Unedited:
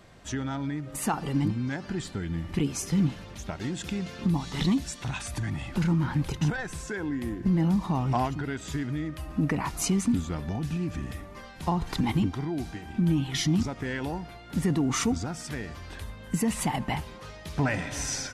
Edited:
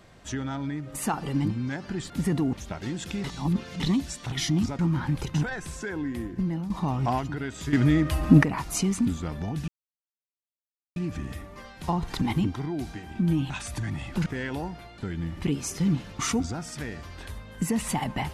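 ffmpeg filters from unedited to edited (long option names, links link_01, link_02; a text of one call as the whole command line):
ffmpeg -i in.wav -filter_complex "[0:a]asplit=15[link_01][link_02][link_03][link_04][link_05][link_06][link_07][link_08][link_09][link_10][link_11][link_12][link_13][link_14][link_15];[link_01]atrim=end=2.102[link_16];[link_02]atrim=start=14.478:end=14.912[link_17];[link_03]atrim=start=3.308:end=4.022[link_18];[link_04]atrim=start=4.018:end=4.582,asetpts=PTS-STARTPTS,areverse[link_19];[link_05]atrim=start=4.578:end=5.102[link_20];[link_06]atrim=start=13.288:end=13.762[link_21];[link_07]atrim=start=5.858:end=7.77,asetpts=PTS-STARTPTS,afade=type=out:start_time=1.212:duration=0.7:curve=qsin:silence=0.251189[link_22];[link_08]atrim=start=7.77:end=8.802,asetpts=PTS-STARTPTS,afade=type=in:duration=0.004:curve=hsin:silence=0.251189[link_23];[link_09]atrim=start=8.798:end=9.502,asetpts=PTS-STARTPTS,volume=11dB[link_24];[link_10]atrim=start=9.498:end=10.75,asetpts=PTS-STARTPTS,afade=type=out:start_time=1.248:duration=0.004:curve=hsin,apad=pad_dur=1.28[link_25];[link_11]atrim=start=10.75:end=13.292,asetpts=PTS-STARTPTS,afade=type=in:duration=0.004:curve=hsin[link_26];[link_12]atrim=start=5.098:end=5.862[link_27];[link_13]atrim=start=13.758:end=14.482[link_28];[link_14]atrim=start=2.098:end=3.312[link_29];[link_15]atrim=start=14.908[link_30];[link_16][link_17]acrossfade=duration=0.004:curve1=hsin:curve2=hsin[link_31];[link_31][link_18]acrossfade=duration=0.004:curve1=hsin:curve2=hsin[link_32];[link_32][link_19]acrossfade=duration=0.004:curve1=hsin:curve2=hsin[link_33];[link_33][link_20]acrossfade=duration=0.004:curve1=hsin:curve2=hsin[link_34];[link_34][link_21]acrossfade=duration=0.004:curve1=hsin:curve2=hsin[link_35];[link_22][link_23]concat=n=2:v=0:a=1[link_36];[link_35][link_36]acrossfade=duration=0.004:curve1=hsin:curve2=hsin[link_37];[link_37][link_24]acrossfade=duration=0.004:curve1=hsin:curve2=hsin[link_38];[link_25][link_26]concat=n=2:v=0:a=1[link_39];[link_38][link_39]acrossfade=duration=0.004:curve1=hsin:curve2=hsin[link_40];[link_40][link_27]acrossfade=duration=0.004:curve1=hsin:curve2=hsin[link_41];[link_41][link_28]acrossfade=duration=0.004:curve1=hsin:curve2=hsin[link_42];[link_42][link_29]acrossfade=duration=0.004:curve1=hsin:curve2=hsin[link_43];[link_43][link_30]acrossfade=duration=0.004:curve1=hsin:curve2=hsin" out.wav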